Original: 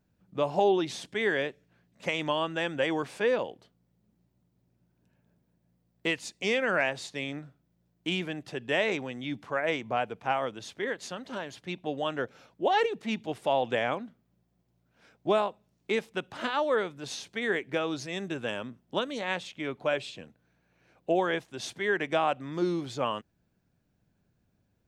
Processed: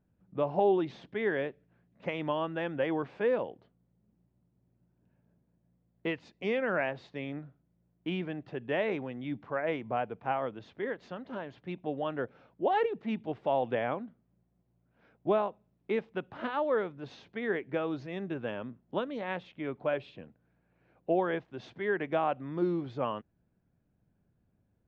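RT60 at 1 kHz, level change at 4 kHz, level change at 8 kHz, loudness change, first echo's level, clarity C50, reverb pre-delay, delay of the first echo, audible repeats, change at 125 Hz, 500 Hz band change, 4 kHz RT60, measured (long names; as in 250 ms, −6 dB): no reverb audible, −12.0 dB, below −25 dB, −3.0 dB, no echo audible, no reverb audible, no reverb audible, no echo audible, no echo audible, −0.5 dB, −2.0 dB, no reverb audible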